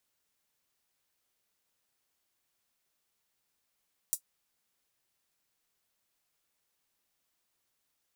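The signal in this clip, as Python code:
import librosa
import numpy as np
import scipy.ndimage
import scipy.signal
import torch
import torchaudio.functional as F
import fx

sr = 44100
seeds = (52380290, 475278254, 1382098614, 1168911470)

y = fx.drum_hat(sr, length_s=0.24, from_hz=7700.0, decay_s=0.09)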